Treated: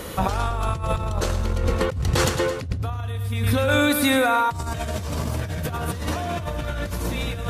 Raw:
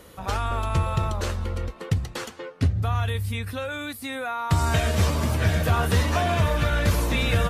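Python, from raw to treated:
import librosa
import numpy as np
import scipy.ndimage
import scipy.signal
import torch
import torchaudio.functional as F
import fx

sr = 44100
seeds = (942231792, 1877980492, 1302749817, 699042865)

p1 = fx.dynamic_eq(x, sr, hz=2100.0, q=0.71, threshold_db=-42.0, ratio=4.0, max_db=-4)
p2 = p1 + fx.echo_feedback(p1, sr, ms=109, feedback_pct=56, wet_db=-9.0, dry=0)
p3 = fx.over_compress(p2, sr, threshold_db=-32.0, ratio=-1.0)
y = p3 * librosa.db_to_amplitude(7.5)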